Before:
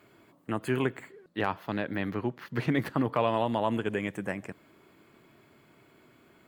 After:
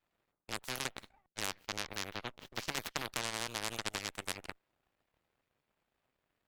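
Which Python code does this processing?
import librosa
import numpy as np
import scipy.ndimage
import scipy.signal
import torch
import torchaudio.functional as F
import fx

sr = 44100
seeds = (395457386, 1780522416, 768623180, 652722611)

y = fx.cheby_harmonics(x, sr, harmonics=(3, 7, 8), levels_db=(-12, -29, -31), full_scale_db=-12.5)
y = fx.spectral_comp(y, sr, ratio=4.0)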